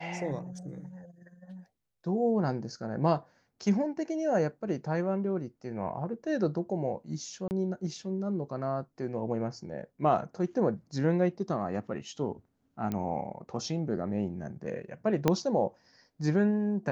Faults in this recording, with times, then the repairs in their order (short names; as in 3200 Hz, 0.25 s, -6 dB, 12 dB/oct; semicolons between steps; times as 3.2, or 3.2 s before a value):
7.48–7.51 gap 29 ms
12.92 pop -20 dBFS
15.28 pop -10 dBFS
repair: de-click; interpolate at 7.48, 29 ms